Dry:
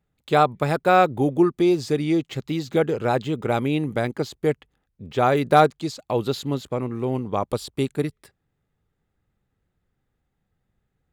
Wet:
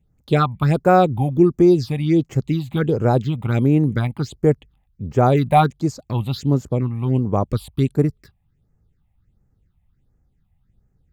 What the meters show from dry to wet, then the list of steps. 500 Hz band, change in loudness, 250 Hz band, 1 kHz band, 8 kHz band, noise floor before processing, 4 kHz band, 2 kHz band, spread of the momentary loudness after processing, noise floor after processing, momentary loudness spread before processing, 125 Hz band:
+1.5 dB, +3.5 dB, +5.0 dB, +1.0 dB, can't be measured, −76 dBFS, −1.5 dB, −2.0 dB, 9 LU, −65 dBFS, 11 LU, +9.5 dB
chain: low-shelf EQ 190 Hz +11.5 dB
all-pass phaser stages 6, 1.4 Hz, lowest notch 370–3,700 Hz
level +2 dB

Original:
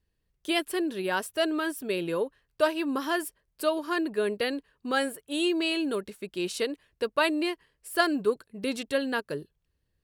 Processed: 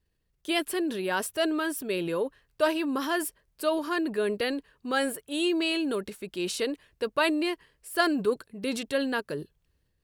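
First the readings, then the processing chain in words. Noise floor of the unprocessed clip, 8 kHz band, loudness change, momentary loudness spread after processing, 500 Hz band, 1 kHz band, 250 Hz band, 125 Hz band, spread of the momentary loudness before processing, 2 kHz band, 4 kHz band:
−78 dBFS, +2.5 dB, 0.0 dB, 8 LU, 0.0 dB, 0.0 dB, +0.5 dB, +1.5 dB, 8 LU, 0.0 dB, 0.0 dB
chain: transient designer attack −1 dB, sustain +5 dB

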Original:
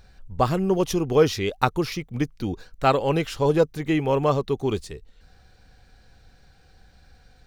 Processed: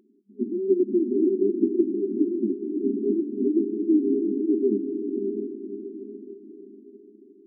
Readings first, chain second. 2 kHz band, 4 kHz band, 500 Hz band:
below −40 dB, below −40 dB, −1.5 dB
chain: decimation without filtering 36×
feedback delay with all-pass diffusion 582 ms, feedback 44%, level −3.5 dB
brick-wall band-pass 200–410 Hz
level +4 dB

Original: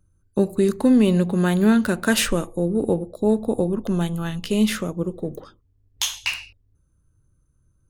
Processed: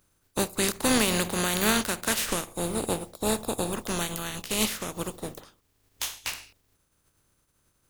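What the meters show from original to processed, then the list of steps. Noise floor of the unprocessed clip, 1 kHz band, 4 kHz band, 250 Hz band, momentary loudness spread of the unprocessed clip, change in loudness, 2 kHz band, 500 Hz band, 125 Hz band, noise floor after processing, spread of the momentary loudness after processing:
−64 dBFS, +0.5 dB, −1.0 dB, −11.5 dB, 11 LU, −6.0 dB, −2.5 dB, −8.0 dB, −11.0 dB, −71 dBFS, 12 LU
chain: compressing power law on the bin magnitudes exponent 0.41
level −7.5 dB

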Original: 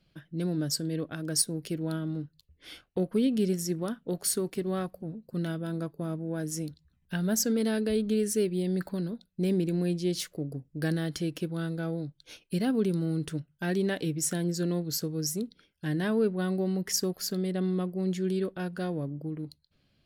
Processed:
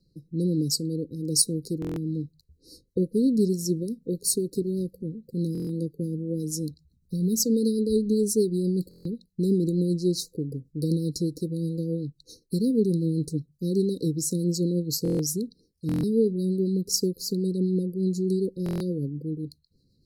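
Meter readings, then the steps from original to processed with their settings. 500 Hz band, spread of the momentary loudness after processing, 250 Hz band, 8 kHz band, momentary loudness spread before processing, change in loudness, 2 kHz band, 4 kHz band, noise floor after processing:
+3.5 dB, 10 LU, +4.0 dB, +3.5 dB, 10 LU, +4.0 dB, below −20 dB, +3.0 dB, −68 dBFS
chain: linear-phase brick-wall band-stop 540–3,800 Hz
rotating-speaker cabinet horn 1.2 Hz, later 8 Hz, at 0:02.10
buffer that repeats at 0:01.80/0:05.53/0:08.89/0:15.03/0:15.87/0:18.64, samples 1,024, times 6
level +5.5 dB

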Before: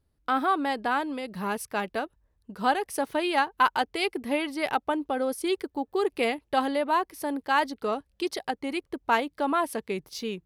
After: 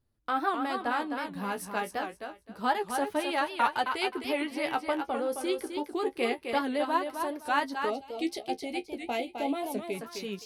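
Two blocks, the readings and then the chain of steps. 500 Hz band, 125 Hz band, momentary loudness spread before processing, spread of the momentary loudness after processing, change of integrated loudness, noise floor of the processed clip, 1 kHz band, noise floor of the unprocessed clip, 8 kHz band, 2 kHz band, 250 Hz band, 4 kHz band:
−3.0 dB, can't be measured, 8 LU, 7 LU, −3.5 dB, −58 dBFS, −3.5 dB, −73 dBFS, −3.0 dB, −3.5 dB, −3.0 dB, −3.0 dB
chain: flanger 0.28 Hz, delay 8.1 ms, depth 9.3 ms, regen +33%
feedback echo with a high-pass in the loop 260 ms, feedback 22%, high-pass 190 Hz, level −6 dB
gain on a spectral selection 0:07.90–0:09.94, 880–2,000 Hz −15 dB
wow of a warped record 78 rpm, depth 160 cents

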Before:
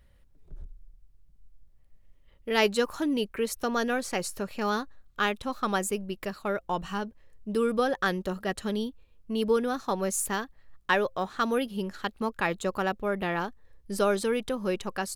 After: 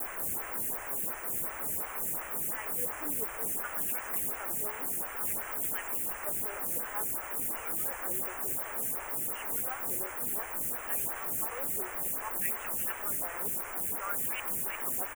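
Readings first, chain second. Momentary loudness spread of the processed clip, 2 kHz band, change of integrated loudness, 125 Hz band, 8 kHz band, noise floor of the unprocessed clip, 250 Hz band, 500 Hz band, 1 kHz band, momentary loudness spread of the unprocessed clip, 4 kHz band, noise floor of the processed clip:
2 LU, −7.5 dB, −2.0 dB, −11.5 dB, +4.0 dB, −60 dBFS, −17.0 dB, −15.0 dB, −9.0 dB, 8 LU, −15.0 dB, −41 dBFS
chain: meter weighting curve D
reversed playback
downward compressor 6 to 1, threshold −35 dBFS, peak gain reduction 21 dB
reversed playback
auto-filter band-pass sine 0.57 Hz 360–2,800 Hz
log-companded quantiser 4 bits
spectral tilt +4 dB per octave
on a send: repeating echo 668 ms, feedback 47%, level −21 dB
on the sum: bit-depth reduction 6 bits, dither triangular
Butterworth band-reject 4,300 Hz, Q 0.66
tape wow and flutter 49 cents
phaser with staggered stages 2.8 Hz
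level +5.5 dB

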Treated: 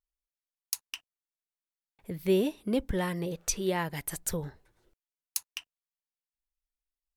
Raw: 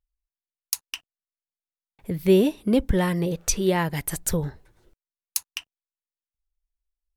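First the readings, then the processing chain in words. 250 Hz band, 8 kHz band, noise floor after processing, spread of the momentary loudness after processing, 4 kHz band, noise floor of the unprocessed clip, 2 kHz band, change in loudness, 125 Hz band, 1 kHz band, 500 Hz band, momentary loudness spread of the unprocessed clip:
−8.5 dB, −6.0 dB, below −85 dBFS, 16 LU, −6.0 dB, below −85 dBFS, −6.0 dB, −7.5 dB, −9.5 dB, −6.5 dB, −7.5 dB, 18 LU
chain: low-shelf EQ 260 Hz −5 dB
level −6 dB

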